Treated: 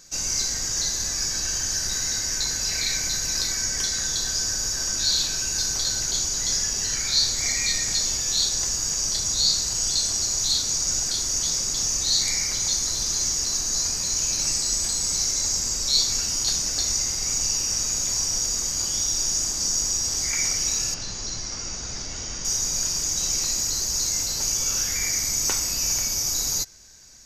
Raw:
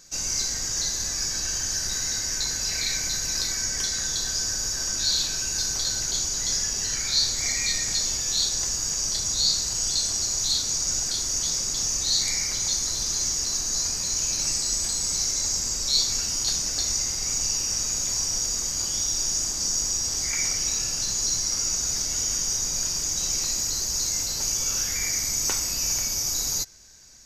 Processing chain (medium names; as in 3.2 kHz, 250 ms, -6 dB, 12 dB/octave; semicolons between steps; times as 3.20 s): 20.94–22.45 s: distance through air 140 m; trim +1.5 dB